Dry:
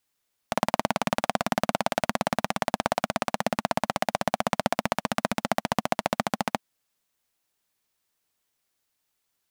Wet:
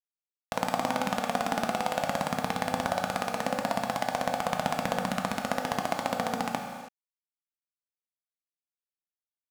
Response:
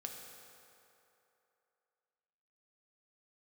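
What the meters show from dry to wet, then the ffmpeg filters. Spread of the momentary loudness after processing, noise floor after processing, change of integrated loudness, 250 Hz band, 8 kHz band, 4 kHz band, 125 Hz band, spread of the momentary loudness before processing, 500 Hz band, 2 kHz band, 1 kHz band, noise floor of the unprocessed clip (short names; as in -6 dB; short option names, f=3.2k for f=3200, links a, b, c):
3 LU, under -85 dBFS, -2.0 dB, -2.5 dB, -2.5 dB, -3.0 dB, -2.5 dB, 2 LU, -2.0 dB, -2.0 dB, -1.5 dB, -78 dBFS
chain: -filter_complex "[0:a]aphaser=in_gain=1:out_gain=1:delay=4.5:decay=0.23:speed=0.4:type=triangular[a];[1:a]atrim=start_sample=2205,afade=t=out:st=0.38:d=0.01,atrim=end_sample=17199[b];[a][b]afir=irnorm=-1:irlink=0,acrusher=bits=7:mix=0:aa=0.5"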